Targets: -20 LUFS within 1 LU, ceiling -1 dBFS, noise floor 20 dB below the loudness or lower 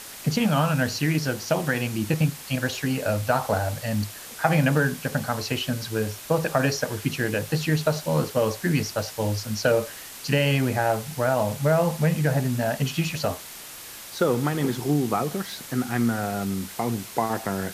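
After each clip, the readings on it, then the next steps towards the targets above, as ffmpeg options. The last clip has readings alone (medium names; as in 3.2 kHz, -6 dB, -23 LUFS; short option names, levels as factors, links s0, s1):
noise floor -41 dBFS; noise floor target -45 dBFS; loudness -25.0 LUFS; peak level -5.0 dBFS; loudness target -20.0 LUFS
-> -af "afftdn=nr=6:nf=-41"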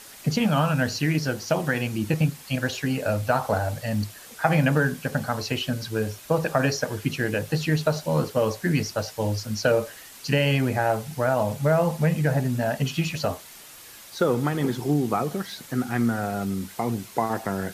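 noise floor -45 dBFS; loudness -25.0 LUFS; peak level -5.0 dBFS; loudness target -20.0 LUFS
-> -af "volume=1.78,alimiter=limit=0.891:level=0:latency=1"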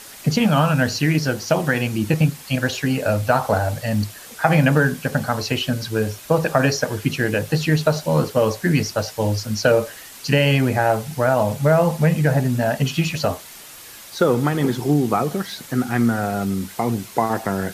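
loudness -20.0 LUFS; peak level -1.0 dBFS; noise floor -40 dBFS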